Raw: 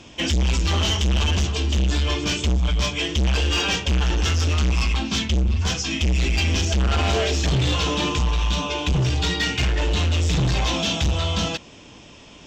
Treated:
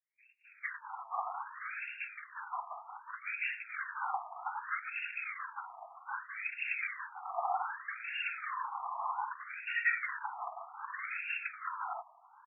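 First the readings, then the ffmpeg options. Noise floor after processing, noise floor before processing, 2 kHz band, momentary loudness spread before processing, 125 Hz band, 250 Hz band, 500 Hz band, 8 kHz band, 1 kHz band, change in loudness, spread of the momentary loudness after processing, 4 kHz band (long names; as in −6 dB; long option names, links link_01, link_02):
−62 dBFS, −45 dBFS, −8.0 dB, 2 LU, below −40 dB, below −40 dB, −23.5 dB, below −40 dB, −6.5 dB, −16.5 dB, 9 LU, below −30 dB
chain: -filter_complex "[0:a]afftfilt=real='hypot(re,im)*cos(2*PI*random(0))':imag='hypot(re,im)*sin(2*PI*random(1))':win_size=512:overlap=0.75,acrossover=split=5100[link_01][link_02];[link_01]adelay=450[link_03];[link_03][link_02]amix=inputs=2:normalize=0,afftfilt=real='re*between(b*sr/1024,910*pow(2000/910,0.5+0.5*sin(2*PI*0.64*pts/sr))/1.41,910*pow(2000/910,0.5+0.5*sin(2*PI*0.64*pts/sr))*1.41)':imag='im*between(b*sr/1024,910*pow(2000/910,0.5+0.5*sin(2*PI*0.64*pts/sr))/1.41,910*pow(2000/910,0.5+0.5*sin(2*PI*0.64*pts/sr))*1.41)':win_size=1024:overlap=0.75,volume=2dB"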